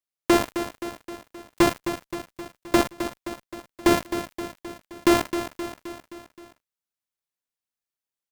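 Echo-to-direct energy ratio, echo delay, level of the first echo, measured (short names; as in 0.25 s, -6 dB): -8.0 dB, 0.262 s, -10.0 dB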